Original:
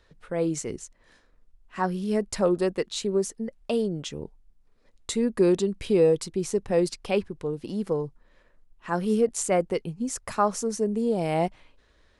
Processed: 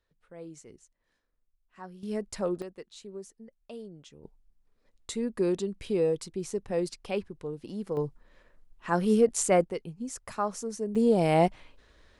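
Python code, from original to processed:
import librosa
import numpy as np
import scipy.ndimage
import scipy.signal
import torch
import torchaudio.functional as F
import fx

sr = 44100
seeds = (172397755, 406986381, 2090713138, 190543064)

y = fx.gain(x, sr, db=fx.steps((0.0, -18.0), (2.03, -7.5), (2.62, -17.0), (4.24, -6.5), (7.97, 0.5), (9.64, -7.0), (10.95, 2.5)))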